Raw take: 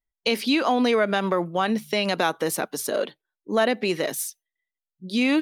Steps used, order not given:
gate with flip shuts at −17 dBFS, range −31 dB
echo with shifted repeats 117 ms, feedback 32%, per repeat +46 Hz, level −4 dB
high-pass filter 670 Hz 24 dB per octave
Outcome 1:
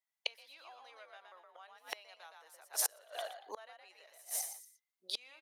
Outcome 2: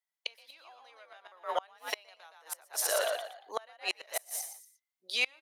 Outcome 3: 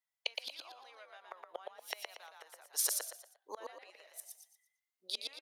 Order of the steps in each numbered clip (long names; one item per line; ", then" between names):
echo with shifted repeats, then gate with flip, then high-pass filter
echo with shifted repeats, then high-pass filter, then gate with flip
gate with flip, then echo with shifted repeats, then high-pass filter